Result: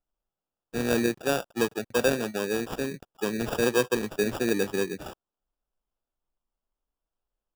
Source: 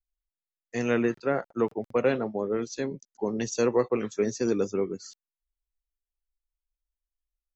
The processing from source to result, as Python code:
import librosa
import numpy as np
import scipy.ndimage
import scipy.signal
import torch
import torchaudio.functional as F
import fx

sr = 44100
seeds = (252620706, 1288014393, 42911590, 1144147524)

y = fx.peak_eq(x, sr, hz=4900.0, db=13.0, octaves=0.3)
y = fx.sample_hold(y, sr, seeds[0], rate_hz=2100.0, jitter_pct=0)